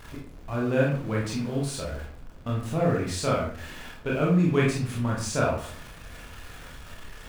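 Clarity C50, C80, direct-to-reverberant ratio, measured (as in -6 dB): 4.0 dB, 8.0 dB, -4.0 dB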